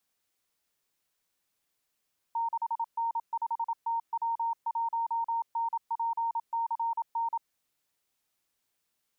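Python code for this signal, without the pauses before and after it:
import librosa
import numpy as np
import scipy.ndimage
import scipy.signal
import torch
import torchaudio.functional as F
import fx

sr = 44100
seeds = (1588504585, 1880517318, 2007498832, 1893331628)

y = fx.morse(sr, text='6N5TW1NPCN', wpm=27, hz=922.0, level_db=-27.0)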